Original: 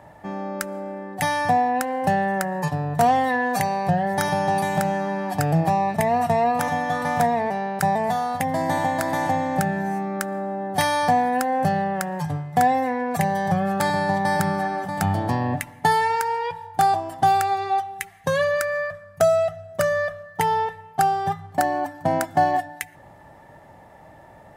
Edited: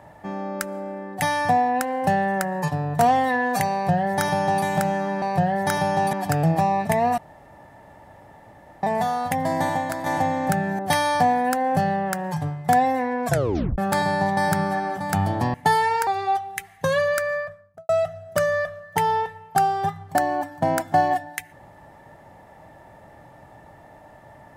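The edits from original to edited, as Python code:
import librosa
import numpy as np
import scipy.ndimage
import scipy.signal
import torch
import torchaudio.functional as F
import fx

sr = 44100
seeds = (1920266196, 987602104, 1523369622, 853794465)

y = fx.studio_fade_out(x, sr, start_s=18.71, length_s=0.61)
y = fx.edit(y, sr, fx.duplicate(start_s=3.73, length_s=0.91, to_s=5.22),
    fx.room_tone_fill(start_s=6.27, length_s=1.65),
    fx.fade_out_to(start_s=8.69, length_s=0.46, floor_db=-6.5),
    fx.cut(start_s=9.88, length_s=0.79),
    fx.tape_stop(start_s=13.14, length_s=0.52),
    fx.cut(start_s=15.42, length_s=0.31),
    fx.cut(start_s=16.26, length_s=1.24), tone=tone)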